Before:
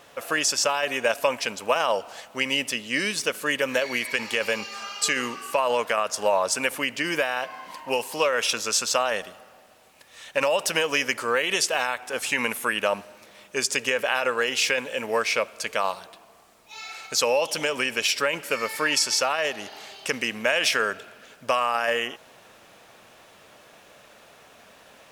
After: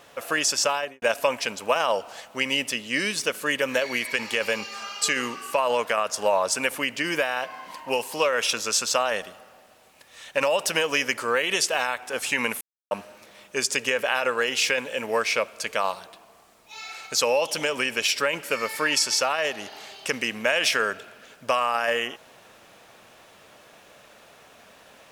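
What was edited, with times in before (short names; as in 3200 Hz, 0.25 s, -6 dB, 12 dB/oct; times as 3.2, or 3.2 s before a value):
0.73–1.02 studio fade out
12.61–12.91 mute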